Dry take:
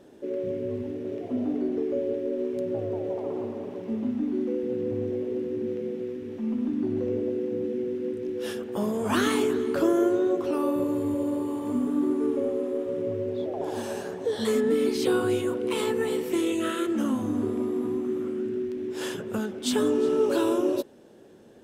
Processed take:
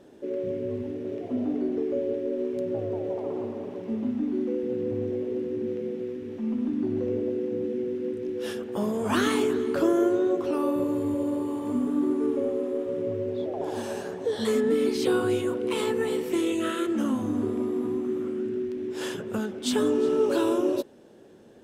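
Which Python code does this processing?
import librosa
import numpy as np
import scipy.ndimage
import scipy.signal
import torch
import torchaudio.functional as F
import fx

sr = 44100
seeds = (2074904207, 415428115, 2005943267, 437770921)

y = fx.high_shelf(x, sr, hz=12000.0, db=-5.0)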